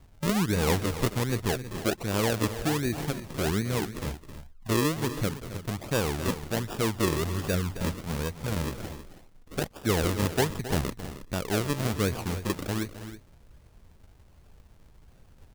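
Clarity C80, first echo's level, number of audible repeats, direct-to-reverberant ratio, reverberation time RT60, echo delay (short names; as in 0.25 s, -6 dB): none, -13.5 dB, 2, none, none, 0.267 s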